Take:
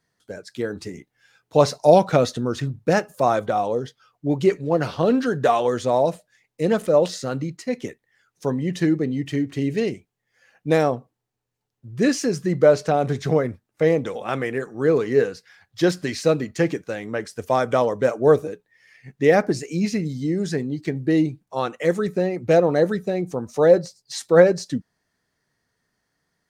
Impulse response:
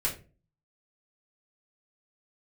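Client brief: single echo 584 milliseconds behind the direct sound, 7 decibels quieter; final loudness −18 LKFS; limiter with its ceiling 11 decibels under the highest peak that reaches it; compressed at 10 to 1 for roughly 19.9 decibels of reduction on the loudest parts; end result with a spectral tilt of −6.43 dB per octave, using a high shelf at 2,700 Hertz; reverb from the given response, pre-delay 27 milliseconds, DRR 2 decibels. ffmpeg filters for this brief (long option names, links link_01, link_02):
-filter_complex "[0:a]highshelf=frequency=2700:gain=-6.5,acompressor=threshold=-30dB:ratio=10,alimiter=level_in=5dB:limit=-24dB:level=0:latency=1,volume=-5dB,aecho=1:1:584:0.447,asplit=2[link_01][link_02];[1:a]atrim=start_sample=2205,adelay=27[link_03];[link_02][link_03]afir=irnorm=-1:irlink=0,volume=-8.5dB[link_04];[link_01][link_04]amix=inputs=2:normalize=0,volume=18.5dB"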